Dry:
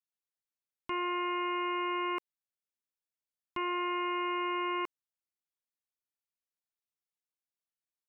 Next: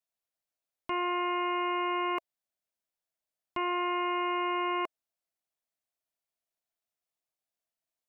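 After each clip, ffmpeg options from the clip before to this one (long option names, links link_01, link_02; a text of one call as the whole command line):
ffmpeg -i in.wav -af "equalizer=frequency=660:width=3.6:gain=11,volume=1.5dB" out.wav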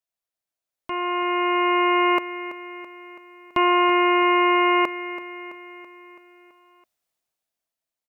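ffmpeg -i in.wav -af "dynaudnorm=framelen=250:gausssize=11:maxgain=12.5dB,aecho=1:1:331|662|993|1324|1655|1986:0.224|0.125|0.0702|0.0393|0.022|0.0123" out.wav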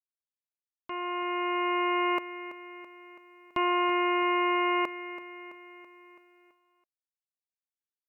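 ffmpeg -i in.wav -af "agate=range=-33dB:threshold=-49dB:ratio=3:detection=peak,volume=-8dB" out.wav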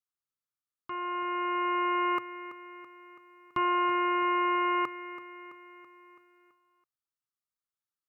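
ffmpeg -i in.wav -af "equalizer=frequency=125:width_type=o:width=0.33:gain=12,equalizer=frequency=630:width_type=o:width=0.33:gain=-12,equalizer=frequency=1250:width_type=o:width=0.33:gain=12,equalizer=frequency=2500:width_type=o:width=0.33:gain=-5,volume=-2.5dB" out.wav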